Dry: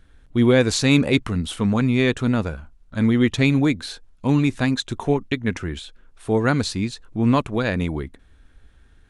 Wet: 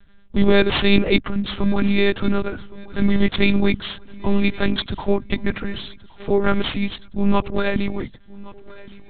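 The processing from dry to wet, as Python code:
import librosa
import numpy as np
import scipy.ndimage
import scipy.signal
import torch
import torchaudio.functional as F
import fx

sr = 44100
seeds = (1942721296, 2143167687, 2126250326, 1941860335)

y = (np.kron(x[::6], np.eye(6)[0]) * 6)[:len(x)]
y = fx.lpc_monotone(y, sr, seeds[0], pitch_hz=200.0, order=8)
y = fx.echo_feedback(y, sr, ms=1117, feedback_pct=44, wet_db=-21)
y = F.gain(torch.from_numpy(y), 2.0).numpy()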